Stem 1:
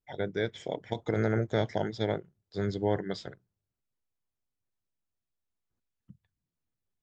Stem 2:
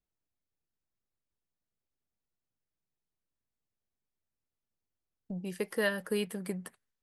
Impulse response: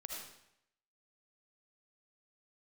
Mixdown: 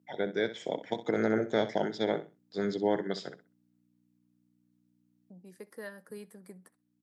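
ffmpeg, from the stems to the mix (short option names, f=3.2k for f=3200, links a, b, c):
-filter_complex "[0:a]aeval=exprs='val(0)+0.000891*(sin(2*PI*60*n/s)+sin(2*PI*2*60*n/s)/2+sin(2*PI*3*60*n/s)/3+sin(2*PI*4*60*n/s)/4+sin(2*PI*5*60*n/s)/5)':c=same,volume=1dB,asplit=2[a][b];[b]volume=-13dB[c];[1:a]equalizer=f=2.9k:t=o:w=0.46:g=-12,volume=-12.5dB,asplit=3[d][e][f];[e]volume=-23dB[g];[f]apad=whole_len=309827[h];[a][h]sidechaincompress=threshold=-49dB:ratio=8:attack=16:release=1420[i];[c][g]amix=inputs=2:normalize=0,aecho=0:1:64|128|192:1|0.2|0.04[j];[i][d][j]amix=inputs=3:normalize=0,highpass=f=170:w=0.5412,highpass=f=170:w=1.3066"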